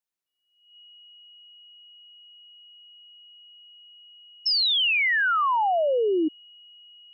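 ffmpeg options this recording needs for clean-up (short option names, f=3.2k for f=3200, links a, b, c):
-af "bandreject=f=2.9k:w=30"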